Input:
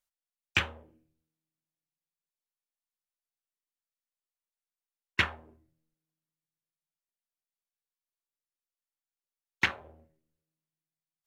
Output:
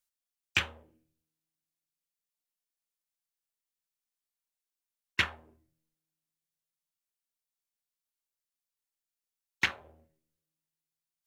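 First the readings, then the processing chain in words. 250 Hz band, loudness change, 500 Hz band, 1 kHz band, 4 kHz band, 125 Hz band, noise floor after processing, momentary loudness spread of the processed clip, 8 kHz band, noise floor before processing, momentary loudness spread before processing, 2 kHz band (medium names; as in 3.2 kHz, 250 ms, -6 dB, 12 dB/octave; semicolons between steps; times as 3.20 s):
-4.0 dB, -1.0 dB, -4.0 dB, -3.0 dB, +0.5 dB, -4.0 dB, under -85 dBFS, 8 LU, +2.5 dB, under -85 dBFS, 8 LU, -1.5 dB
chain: treble shelf 2.8 kHz +7.5 dB; trim -4 dB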